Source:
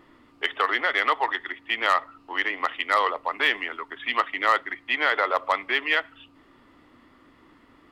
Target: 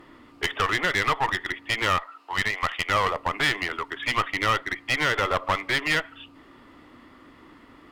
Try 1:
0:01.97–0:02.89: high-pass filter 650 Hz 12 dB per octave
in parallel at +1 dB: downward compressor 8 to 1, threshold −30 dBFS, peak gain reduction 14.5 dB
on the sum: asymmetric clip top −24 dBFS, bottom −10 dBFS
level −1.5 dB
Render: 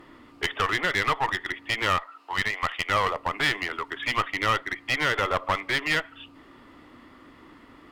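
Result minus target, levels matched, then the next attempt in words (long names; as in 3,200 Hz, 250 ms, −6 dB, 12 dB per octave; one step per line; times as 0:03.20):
downward compressor: peak gain reduction +5 dB
0:01.97–0:02.89: high-pass filter 650 Hz 12 dB per octave
in parallel at +1 dB: downward compressor 8 to 1, threshold −24 dBFS, peak gain reduction 9.5 dB
on the sum: asymmetric clip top −24 dBFS, bottom −10 dBFS
level −1.5 dB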